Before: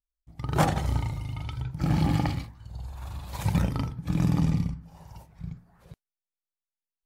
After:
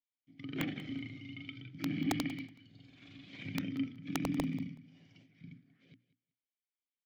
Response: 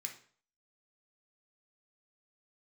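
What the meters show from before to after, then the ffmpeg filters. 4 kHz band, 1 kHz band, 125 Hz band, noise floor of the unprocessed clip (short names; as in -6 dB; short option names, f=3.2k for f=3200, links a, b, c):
-5.0 dB, -15.0 dB, -17.5 dB, under -85 dBFS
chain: -filter_complex "[0:a]highpass=f=110:w=0.5412,highpass=f=110:w=1.3066,equalizer=f=110:t=q:w=4:g=6,equalizer=f=750:t=q:w=4:g=8,equalizer=f=4k:t=q:w=4:g=-3,lowpass=f=5.6k:w=0.5412,lowpass=f=5.6k:w=1.3066,acrossover=split=3400[a][b];[b]acompressor=threshold=-57dB:ratio=4:attack=1:release=60[c];[a][c]amix=inputs=2:normalize=0,highshelf=f=2.9k:g=10,asplit=2[d][e];[e]acompressor=threshold=-33dB:ratio=10,volume=-2.5dB[f];[d][f]amix=inputs=2:normalize=0,asplit=3[g][h][i];[g]bandpass=f=270:t=q:w=8,volume=0dB[j];[h]bandpass=f=2.29k:t=q:w=8,volume=-6dB[k];[i]bandpass=f=3.01k:t=q:w=8,volume=-9dB[l];[j][k][l]amix=inputs=3:normalize=0,aeval=exprs='(mod(17.8*val(0)+1,2)-1)/17.8':c=same,bandreject=f=60:t=h:w=6,bandreject=f=120:t=h:w=6,bandreject=f=180:t=h:w=6,bandreject=f=240:t=h:w=6,bandreject=f=300:t=h:w=6,aecho=1:1:187|374:0.126|0.0227,volume=1dB"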